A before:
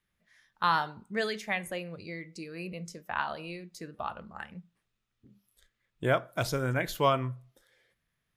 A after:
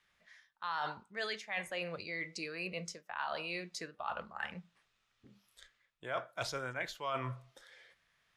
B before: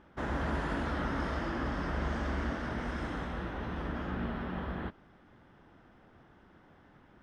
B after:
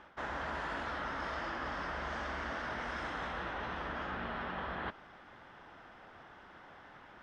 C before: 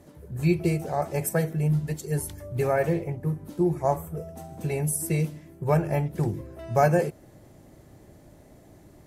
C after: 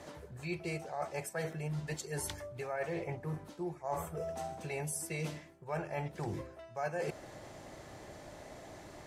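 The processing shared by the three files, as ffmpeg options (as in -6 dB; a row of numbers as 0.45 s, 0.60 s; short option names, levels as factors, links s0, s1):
-filter_complex "[0:a]acrossover=split=550 7800:gain=0.224 1 0.141[s0][s1][s2];[s0][s1][s2]amix=inputs=3:normalize=0,areverse,acompressor=threshold=0.00501:ratio=6,areverse,volume=2.99"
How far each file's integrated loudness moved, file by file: -7.5 LU, -3.0 LU, -13.5 LU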